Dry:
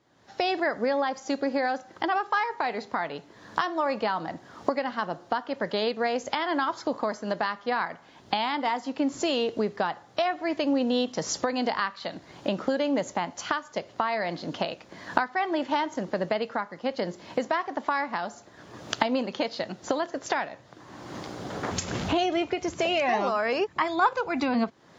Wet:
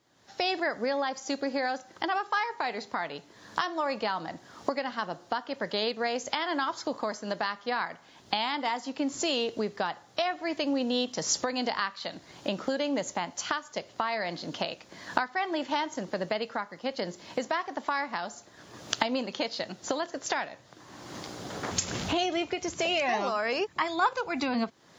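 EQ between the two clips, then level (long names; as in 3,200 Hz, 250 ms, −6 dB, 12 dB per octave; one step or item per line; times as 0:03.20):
high-shelf EQ 3,200 Hz +9.5 dB
−4.0 dB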